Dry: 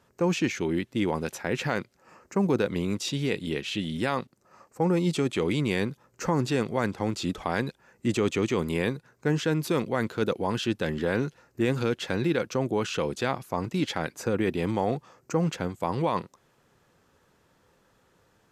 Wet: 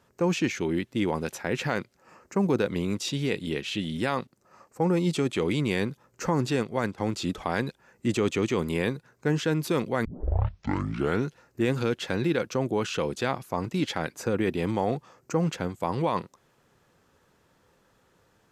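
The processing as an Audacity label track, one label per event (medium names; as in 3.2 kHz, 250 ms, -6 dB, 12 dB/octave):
6.560000	6.980000	upward expansion, over -41 dBFS
10.050000	10.050000	tape start 1.20 s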